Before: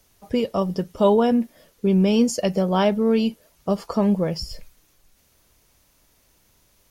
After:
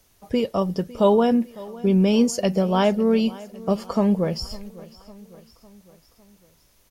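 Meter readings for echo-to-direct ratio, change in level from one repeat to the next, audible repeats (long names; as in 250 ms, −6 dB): −18.5 dB, −5.0 dB, 3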